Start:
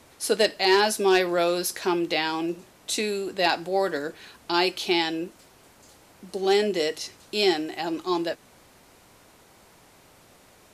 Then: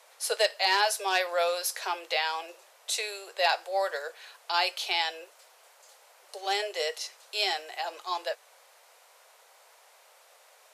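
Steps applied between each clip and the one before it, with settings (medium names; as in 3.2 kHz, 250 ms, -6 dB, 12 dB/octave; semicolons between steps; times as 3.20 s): steep high-pass 490 Hz 48 dB/octave; trim -2 dB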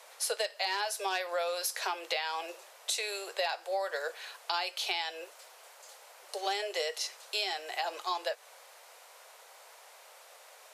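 compression 8:1, threshold -33 dBFS, peak gain reduction 13.5 dB; trim +3.5 dB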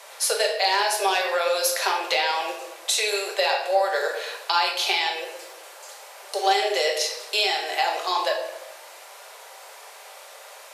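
simulated room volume 410 m³, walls mixed, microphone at 1.2 m; trim +8.5 dB; MP3 128 kbps 32 kHz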